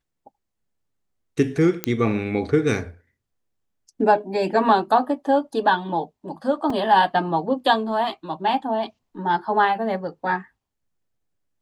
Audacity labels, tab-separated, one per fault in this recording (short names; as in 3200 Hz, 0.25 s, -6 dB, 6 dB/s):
1.840000	1.840000	pop -6 dBFS
6.700000	6.700000	gap 3.5 ms